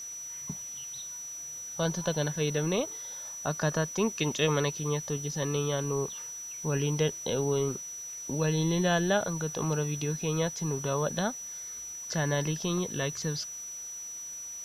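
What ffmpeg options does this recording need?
-af "adeclick=t=4,bandreject=f=5900:w=30,afwtdn=0.002"

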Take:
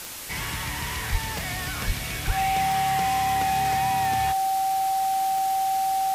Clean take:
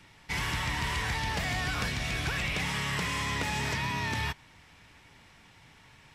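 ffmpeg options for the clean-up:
-filter_complex "[0:a]adeclick=t=4,bandreject=f=770:w=30,asplit=3[s0][s1][s2];[s0]afade=t=out:st=1.11:d=0.02[s3];[s1]highpass=f=140:w=0.5412,highpass=f=140:w=1.3066,afade=t=in:st=1.11:d=0.02,afade=t=out:st=1.23:d=0.02[s4];[s2]afade=t=in:st=1.23:d=0.02[s5];[s3][s4][s5]amix=inputs=3:normalize=0,asplit=3[s6][s7][s8];[s6]afade=t=out:st=1.86:d=0.02[s9];[s7]highpass=f=140:w=0.5412,highpass=f=140:w=1.3066,afade=t=in:st=1.86:d=0.02,afade=t=out:st=1.98:d=0.02[s10];[s8]afade=t=in:st=1.98:d=0.02[s11];[s9][s10][s11]amix=inputs=3:normalize=0,asplit=3[s12][s13][s14];[s12]afade=t=out:st=2.26:d=0.02[s15];[s13]highpass=f=140:w=0.5412,highpass=f=140:w=1.3066,afade=t=in:st=2.26:d=0.02,afade=t=out:st=2.38:d=0.02[s16];[s14]afade=t=in:st=2.38:d=0.02[s17];[s15][s16][s17]amix=inputs=3:normalize=0,afwtdn=0.016"

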